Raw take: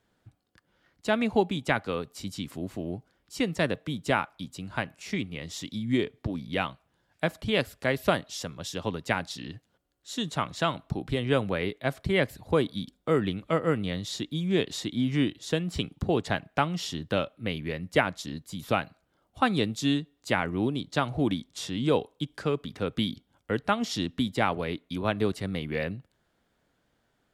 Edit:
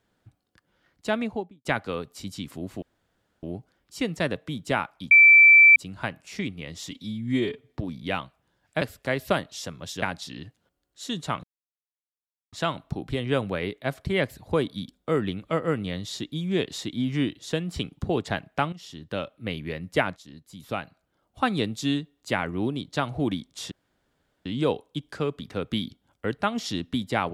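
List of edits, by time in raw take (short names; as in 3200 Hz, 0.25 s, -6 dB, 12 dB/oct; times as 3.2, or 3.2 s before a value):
1.07–1.65 studio fade out
2.82 insert room tone 0.61 s
4.5 add tone 2330 Hz -9.5 dBFS 0.65 s
5.65–6.2 stretch 1.5×
7.28–7.59 cut
8.8–9.11 cut
10.52 insert silence 1.09 s
16.72–17.48 fade in, from -14.5 dB
18.16–19.43 fade in, from -12.5 dB
21.71 insert room tone 0.74 s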